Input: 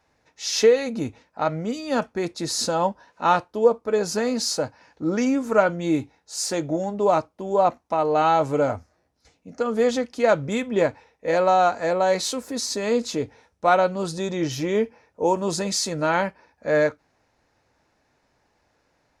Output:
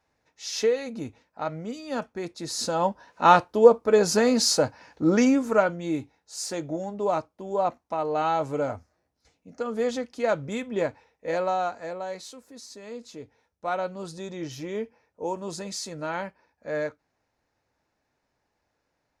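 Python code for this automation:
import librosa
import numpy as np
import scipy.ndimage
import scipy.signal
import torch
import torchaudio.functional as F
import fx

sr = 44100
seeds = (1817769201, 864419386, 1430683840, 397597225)

y = fx.gain(x, sr, db=fx.line((2.41, -7.0), (3.25, 3.0), (5.19, 3.0), (5.82, -6.0), (11.34, -6.0), (12.37, -17.0), (12.96, -17.0), (13.87, -9.5)))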